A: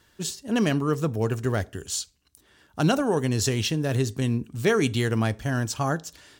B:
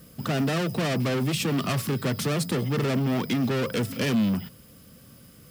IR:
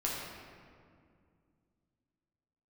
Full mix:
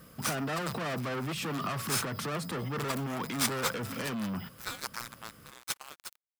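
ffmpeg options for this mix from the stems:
-filter_complex "[0:a]aderivative,aeval=exprs='sgn(val(0))*max(abs(val(0))-0.00891,0)':channel_layout=same,aeval=exprs='val(0)*sgn(sin(2*PI*1900*n/s))':channel_layout=same,volume=-0.5dB[link_01];[1:a]alimiter=level_in=0.5dB:limit=-24dB:level=0:latency=1:release=16,volume=-0.5dB,volume=-5dB[link_02];[link_01][link_02]amix=inputs=2:normalize=0,equalizer=frequency=1200:width_type=o:width=1.7:gain=10"

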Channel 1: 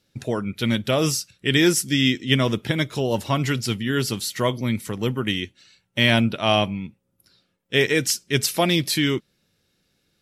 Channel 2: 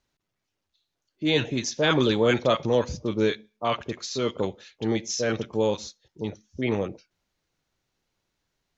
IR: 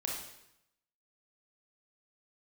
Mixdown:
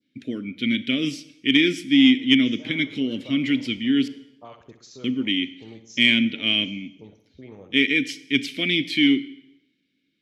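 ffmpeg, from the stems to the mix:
-filter_complex "[0:a]adynamicequalizer=threshold=0.0251:dfrequency=2700:dqfactor=1.1:tfrequency=2700:tqfactor=1.1:attack=5:release=100:ratio=0.375:range=2.5:mode=boostabove:tftype=bell,asplit=3[link_01][link_02][link_03];[link_01]bandpass=frequency=270:width_type=q:width=8,volume=0dB[link_04];[link_02]bandpass=frequency=2290:width_type=q:width=8,volume=-6dB[link_05];[link_03]bandpass=frequency=3010:width_type=q:width=8,volume=-9dB[link_06];[link_04][link_05][link_06]amix=inputs=3:normalize=0,volume=2.5dB,asplit=3[link_07][link_08][link_09];[link_07]atrim=end=4.08,asetpts=PTS-STARTPTS,afade=type=out:start_time=4.076:duration=0.004:curve=hsin[link_10];[link_08]atrim=start=4.08:end=5.04,asetpts=PTS-STARTPTS,volume=0[link_11];[link_09]atrim=start=5.04,asetpts=PTS-STARTPTS,afade=type=in:duration=0.004:curve=hsin[link_12];[link_10][link_11][link_12]concat=n=3:v=0:a=1,asplit=3[link_13][link_14][link_15];[link_14]volume=-14dB[link_16];[1:a]equalizer=frequency=3000:width=0.67:gain=-5.5,acompressor=threshold=-31dB:ratio=3,adelay=800,volume=-15dB,asplit=2[link_17][link_18];[link_18]volume=-12dB[link_19];[link_15]apad=whole_len=422192[link_20];[link_17][link_20]sidechaincompress=threshold=-34dB:ratio=8:attack=16:release=346[link_21];[2:a]atrim=start_sample=2205[link_22];[link_16][link_22]afir=irnorm=-1:irlink=0[link_23];[link_19]aecho=0:1:62|124|186|248|310|372|434|496|558:1|0.57|0.325|0.185|0.106|0.0602|0.0343|0.0195|0.0111[link_24];[link_13][link_21][link_23][link_24]amix=inputs=4:normalize=0,acontrast=22"

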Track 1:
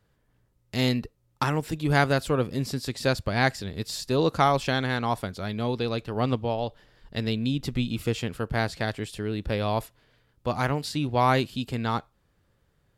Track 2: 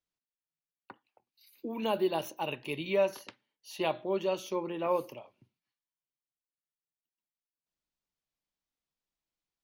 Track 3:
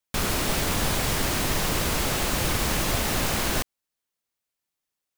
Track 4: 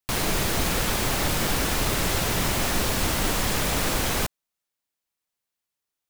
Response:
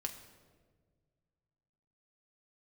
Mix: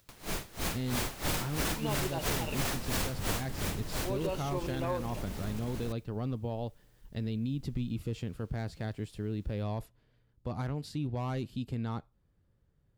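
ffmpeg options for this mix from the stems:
-filter_complex "[0:a]asoftclip=type=hard:threshold=-18dB,volume=-13.5dB[link_01];[1:a]volume=-2dB,asplit=3[link_02][link_03][link_04];[link_02]atrim=end=2.66,asetpts=PTS-STARTPTS,afade=type=out:start_time=2.656:duration=0.004:curve=hsin[link_05];[link_03]atrim=start=2.66:end=3.94,asetpts=PTS-STARTPTS,volume=0[link_06];[link_04]atrim=start=3.94,asetpts=PTS-STARTPTS,afade=type=in:duration=0.004:curve=hsin[link_07];[link_05][link_06][link_07]concat=n=3:v=0:a=1[link_08];[2:a]alimiter=limit=-21.5dB:level=0:latency=1:release=135,adelay=2300,volume=-15.5dB[link_09];[3:a]dynaudnorm=framelen=380:gausssize=3:maxgain=4.5dB,aeval=exprs='val(0)*pow(10,-24*(0.5-0.5*cos(2*PI*3*n/s))/20)':channel_layout=same,afade=type=in:start_time=0.74:duration=0.58:silence=0.398107,afade=type=out:start_time=2.93:duration=0.71:silence=0.251189[link_10];[link_08][link_10]amix=inputs=2:normalize=0,acompressor=mode=upward:threshold=-53dB:ratio=2.5,alimiter=limit=-16dB:level=0:latency=1:release=29,volume=0dB[link_11];[link_01][link_09]amix=inputs=2:normalize=0,lowshelf=frequency=430:gain=12,alimiter=level_in=1dB:limit=-24dB:level=0:latency=1:release=15,volume=-1dB,volume=0dB[link_12];[link_11][link_12]amix=inputs=2:normalize=0,acompressor=threshold=-28dB:ratio=6"

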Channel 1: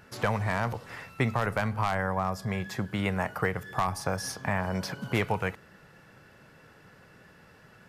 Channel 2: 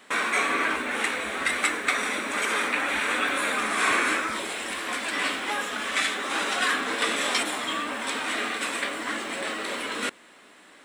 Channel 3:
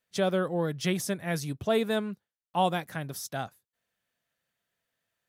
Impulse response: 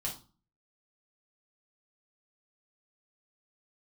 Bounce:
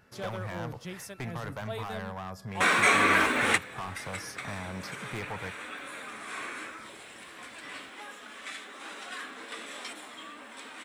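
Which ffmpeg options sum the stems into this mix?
-filter_complex "[0:a]asoftclip=type=hard:threshold=-25dB,volume=-7.5dB[link_01];[1:a]adelay=2500,volume=2.5dB[link_02];[2:a]acrossover=split=500[link_03][link_04];[link_03]aeval=exprs='val(0)*(1-0.7/2+0.7/2*cos(2*PI*1.4*n/s))':channel_layout=same[link_05];[link_04]aeval=exprs='val(0)*(1-0.7/2-0.7/2*cos(2*PI*1.4*n/s))':channel_layout=same[link_06];[link_05][link_06]amix=inputs=2:normalize=0,volume=-9dB,asplit=2[link_07][link_08];[link_08]apad=whole_len=588608[link_09];[link_02][link_09]sidechaingate=range=-18dB:threshold=-60dB:ratio=16:detection=peak[link_10];[link_01][link_10][link_07]amix=inputs=3:normalize=0"

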